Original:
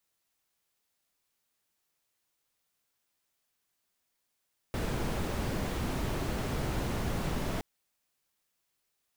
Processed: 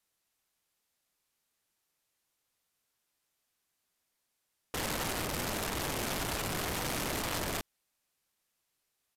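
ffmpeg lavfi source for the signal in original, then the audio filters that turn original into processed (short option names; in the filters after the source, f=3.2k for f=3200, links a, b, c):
-f lavfi -i "anoisesrc=c=brown:a=0.117:d=2.87:r=44100:seed=1"
-af "aeval=exprs='(mod(28.2*val(0)+1,2)-1)/28.2':c=same,aresample=32000,aresample=44100"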